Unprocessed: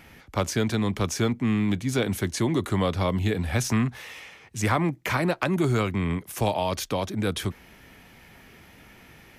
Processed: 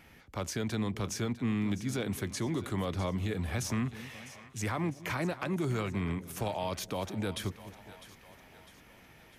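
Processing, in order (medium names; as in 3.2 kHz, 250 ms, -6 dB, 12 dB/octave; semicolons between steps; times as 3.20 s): peak limiter -17 dBFS, peak gain reduction 5.5 dB; on a send: two-band feedback delay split 530 Hz, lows 210 ms, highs 653 ms, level -15 dB; on the sum: trim -7 dB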